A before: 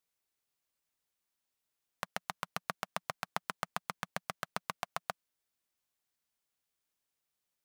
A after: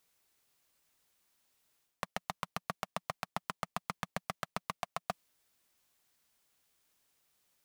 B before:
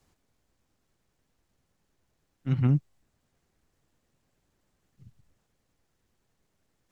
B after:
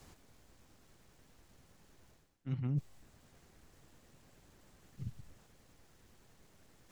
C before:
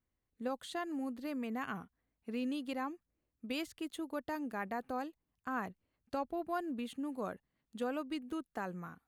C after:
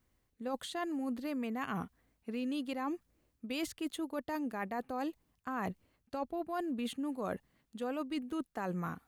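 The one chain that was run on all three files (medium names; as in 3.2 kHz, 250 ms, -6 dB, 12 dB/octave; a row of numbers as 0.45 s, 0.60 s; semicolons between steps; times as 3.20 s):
dynamic bell 1.5 kHz, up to -4 dB, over -57 dBFS, Q 5; reverse; compression 8:1, threshold -45 dBFS; reverse; trim +11 dB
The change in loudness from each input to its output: -0.5 LU, -13.5 LU, +1.5 LU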